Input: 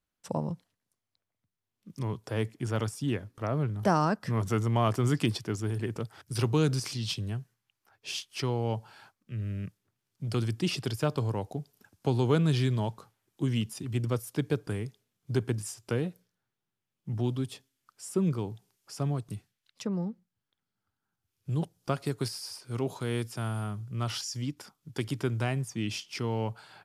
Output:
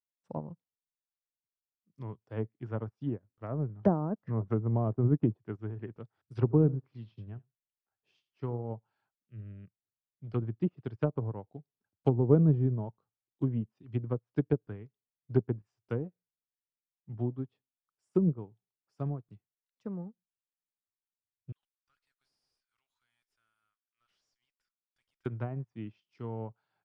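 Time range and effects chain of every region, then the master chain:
6.40–8.71 s: low-pass 2.1 kHz 6 dB/octave + delay 82 ms -15 dB
21.52–25.26 s: high-pass 1.5 kHz 24 dB/octave + valve stage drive 44 dB, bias 0.45
whole clip: low-pass that closes with the level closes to 580 Hz, closed at -23.5 dBFS; low-pass 1.8 kHz 6 dB/octave; upward expansion 2.5:1, over -43 dBFS; trim +5 dB

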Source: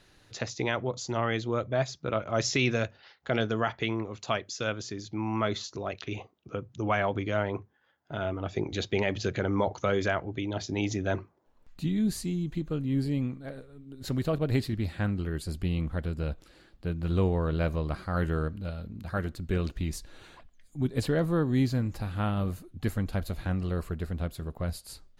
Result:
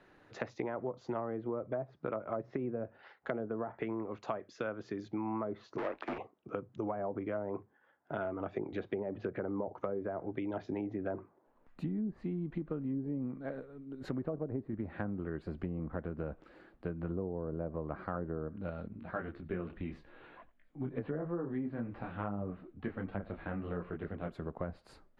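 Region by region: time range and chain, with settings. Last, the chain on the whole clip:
5.78–6.18 s: square wave that keeps the level + three-band isolator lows -15 dB, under 310 Hz, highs -23 dB, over 7.4 kHz + frequency shift -59 Hz
18.88–24.32 s: resonant high shelf 4.7 kHz -12.5 dB, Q 1.5 + delay 91 ms -21.5 dB + detune thickener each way 20 cents
whole clip: low-pass that closes with the level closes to 650 Hz, closed at -23 dBFS; three-band isolator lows -13 dB, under 180 Hz, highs -21 dB, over 2.1 kHz; compression, threshold -36 dBFS; trim +2.5 dB

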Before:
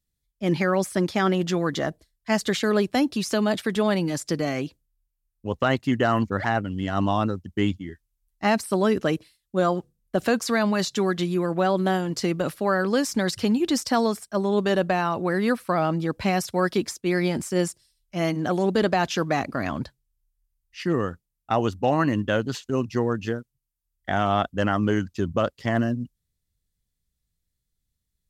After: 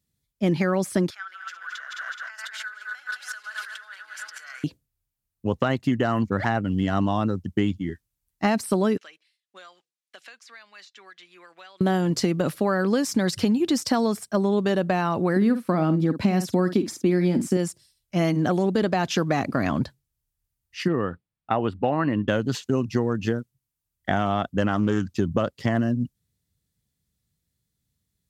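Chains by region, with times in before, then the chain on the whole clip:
1.10–4.64 s: backward echo that repeats 106 ms, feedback 76%, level -7 dB + compressor with a negative ratio -30 dBFS + ladder high-pass 1.4 kHz, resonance 85%
8.97–11.81 s: ladder band-pass 2.7 kHz, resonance 30% + peaking EQ 2.5 kHz -8.5 dB 3 oct + three bands compressed up and down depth 100%
15.36–17.57 s: peaking EQ 260 Hz +10.5 dB 1.1 oct + doubling 50 ms -12 dB
20.88–22.28 s: boxcar filter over 7 samples + bass shelf 340 Hz -6 dB
24.68–25.15 s: dynamic bell 5.6 kHz, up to +5 dB, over -46 dBFS, Q 0.84 + loudspeaker Doppler distortion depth 0.19 ms
whole clip: high-pass 110 Hz; bass shelf 260 Hz +7.5 dB; compression, threshold -22 dBFS; trim +3.5 dB

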